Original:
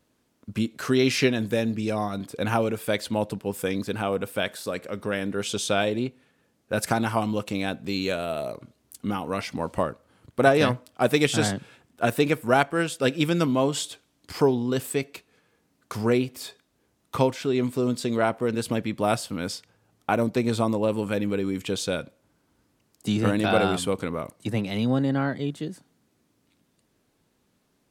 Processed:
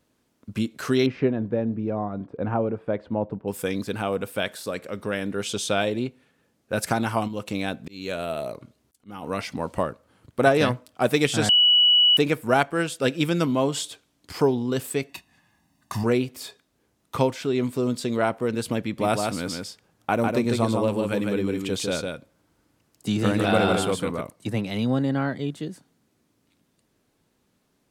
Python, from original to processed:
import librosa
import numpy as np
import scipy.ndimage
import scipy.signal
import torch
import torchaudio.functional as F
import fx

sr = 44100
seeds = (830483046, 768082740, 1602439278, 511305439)

y = fx.lowpass(x, sr, hz=1000.0, slope=12, at=(1.06, 3.48))
y = fx.auto_swell(y, sr, attack_ms=328.0, at=(7.27, 9.22), fade=0.02)
y = fx.comb(y, sr, ms=1.1, depth=0.92, at=(15.09, 16.04))
y = fx.echo_single(y, sr, ms=152, db=-4.0, at=(18.82, 24.21))
y = fx.edit(y, sr, fx.bleep(start_s=11.49, length_s=0.68, hz=2940.0, db=-13.5), tone=tone)